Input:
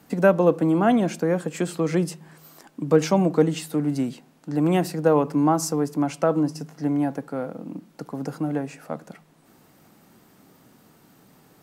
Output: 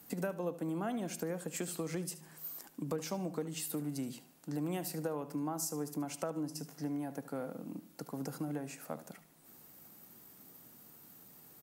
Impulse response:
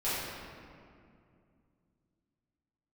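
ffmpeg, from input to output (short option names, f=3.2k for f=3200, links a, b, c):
-af "aemphasis=mode=production:type=50fm,acompressor=threshold=-26dB:ratio=6,aecho=1:1:74|148|222:0.188|0.064|0.0218,volume=-8.5dB"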